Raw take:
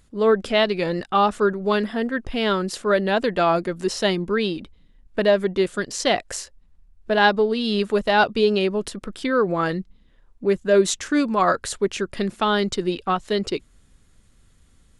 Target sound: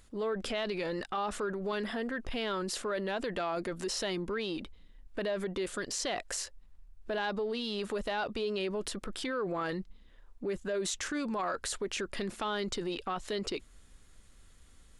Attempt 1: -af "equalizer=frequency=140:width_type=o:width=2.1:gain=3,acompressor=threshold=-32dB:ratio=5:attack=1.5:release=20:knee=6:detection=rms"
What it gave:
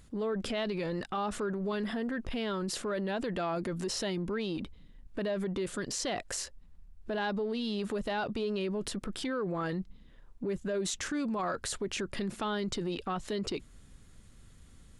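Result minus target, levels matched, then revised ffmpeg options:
125 Hz band +4.5 dB
-af "equalizer=frequency=140:width_type=o:width=2.1:gain=-7.5,acompressor=threshold=-32dB:ratio=5:attack=1.5:release=20:knee=6:detection=rms"

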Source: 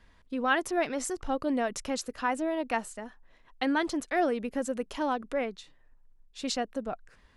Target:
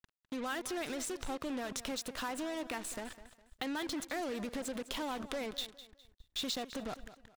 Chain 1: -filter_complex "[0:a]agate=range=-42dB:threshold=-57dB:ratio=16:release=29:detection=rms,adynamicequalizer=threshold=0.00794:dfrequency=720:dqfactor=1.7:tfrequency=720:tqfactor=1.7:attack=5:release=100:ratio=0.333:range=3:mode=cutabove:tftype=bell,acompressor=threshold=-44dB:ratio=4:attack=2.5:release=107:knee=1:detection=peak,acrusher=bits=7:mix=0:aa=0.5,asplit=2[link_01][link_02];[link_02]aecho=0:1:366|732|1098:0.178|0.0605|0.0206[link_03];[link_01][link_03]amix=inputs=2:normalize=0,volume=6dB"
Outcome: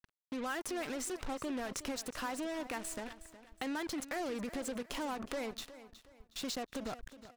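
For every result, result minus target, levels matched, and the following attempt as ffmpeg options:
echo 161 ms late; 4,000 Hz band −3.5 dB
-filter_complex "[0:a]agate=range=-42dB:threshold=-57dB:ratio=16:release=29:detection=rms,adynamicequalizer=threshold=0.00794:dfrequency=720:dqfactor=1.7:tfrequency=720:tqfactor=1.7:attack=5:release=100:ratio=0.333:range=3:mode=cutabove:tftype=bell,acompressor=threshold=-44dB:ratio=4:attack=2.5:release=107:knee=1:detection=peak,acrusher=bits=7:mix=0:aa=0.5,asplit=2[link_01][link_02];[link_02]aecho=0:1:205|410|615:0.178|0.0605|0.0206[link_03];[link_01][link_03]amix=inputs=2:normalize=0,volume=6dB"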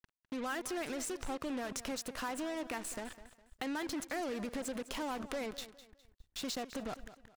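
4,000 Hz band −3.5 dB
-filter_complex "[0:a]agate=range=-42dB:threshold=-57dB:ratio=16:release=29:detection=rms,adynamicequalizer=threshold=0.00794:dfrequency=720:dqfactor=1.7:tfrequency=720:tqfactor=1.7:attack=5:release=100:ratio=0.333:range=3:mode=cutabove:tftype=bell,acompressor=threshold=-44dB:ratio=4:attack=2.5:release=107:knee=1:detection=peak,equalizer=frequency=3600:width=3.6:gain=8.5,acrusher=bits=7:mix=0:aa=0.5,asplit=2[link_01][link_02];[link_02]aecho=0:1:205|410|615:0.178|0.0605|0.0206[link_03];[link_01][link_03]amix=inputs=2:normalize=0,volume=6dB"

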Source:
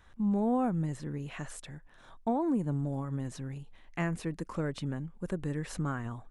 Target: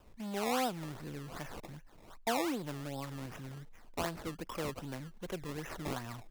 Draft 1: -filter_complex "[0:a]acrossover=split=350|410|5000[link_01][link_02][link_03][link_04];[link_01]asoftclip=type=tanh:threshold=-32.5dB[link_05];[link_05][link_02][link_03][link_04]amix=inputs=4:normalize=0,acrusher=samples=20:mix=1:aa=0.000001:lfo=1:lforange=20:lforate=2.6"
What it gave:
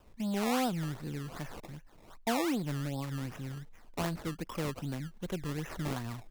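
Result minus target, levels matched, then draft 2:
soft clipping: distortion −8 dB
-filter_complex "[0:a]acrossover=split=350|410|5000[link_01][link_02][link_03][link_04];[link_01]asoftclip=type=tanh:threshold=-44.5dB[link_05];[link_05][link_02][link_03][link_04]amix=inputs=4:normalize=0,acrusher=samples=20:mix=1:aa=0.000001:lfo=1:lforange=20:lforate=2.6"

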